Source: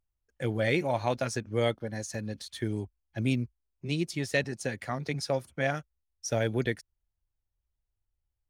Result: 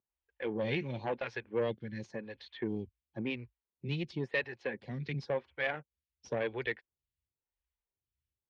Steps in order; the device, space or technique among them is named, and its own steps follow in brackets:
vibe pedal into a guitar amplifier (phaser with staggered stages 0.95 Hz; tube saturation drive 25 dB, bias 0.4; loudspeaker in its box 80–3,400 Hz, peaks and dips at 100 Hz −9 dB, 170 Hz −5 dB, 290 Hz −6 dB, 650 Hz −10 dB, 1,300 Hz −10 dB)
level +4 dB

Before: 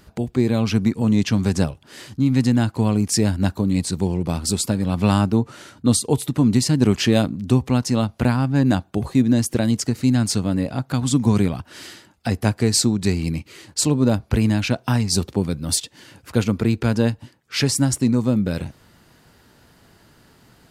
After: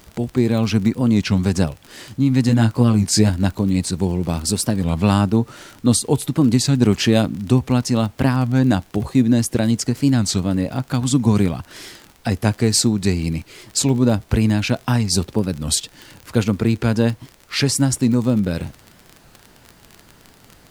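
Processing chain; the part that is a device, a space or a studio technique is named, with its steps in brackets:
0:02.47–0:03.30: double-tracking delay 18 ms −4.5 dB
warped LP (wow of a warped record 33 1/3 rpm, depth 160 cents; surface crackle 30 per second −27 dBFS; pink noise bed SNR 35 dB)
level +1.5 dB

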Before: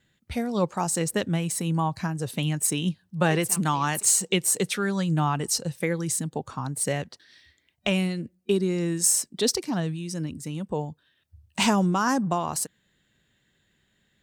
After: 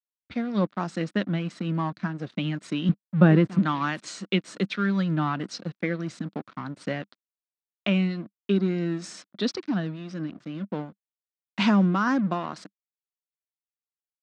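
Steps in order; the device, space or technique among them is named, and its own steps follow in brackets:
0:02.89–0:03.59: spectral tilt −3.5 dB per octave
blown loudspeaker (dead-zone distortion −39 dBFS; loudspeaker in its box 160–4,200 Hz, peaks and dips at 200 Hz +7 dB, 300 Hz +5 dB, 440 Hz −6 dB, 840 Hz −7 dB, 1,400 Hz +4 dB, 2,900 Hz −3 dB)

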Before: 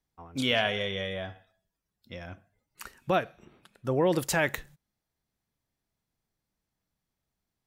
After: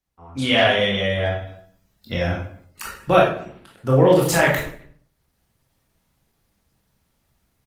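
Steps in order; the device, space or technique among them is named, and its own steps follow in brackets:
speakerphone in a meeting room (convolution reverb RT60 0.55 s, pre-delay 19 ms, DRR −3.5 dB; far-end echo of a speakerphone 230 ms, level −26 dB; automatic gain control gain up to 14 dB; level −1 dB; Opus 20 kbit/s 48,000 Hz)

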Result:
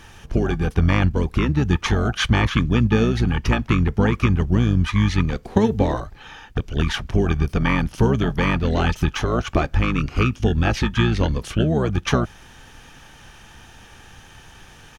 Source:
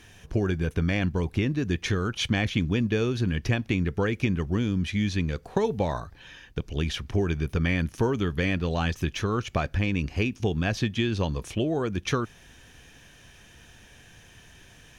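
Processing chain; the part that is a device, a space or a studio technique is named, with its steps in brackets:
octave pedal (pitch-shifted copies added −12 semitones −1 dB)
level +4.5 dB

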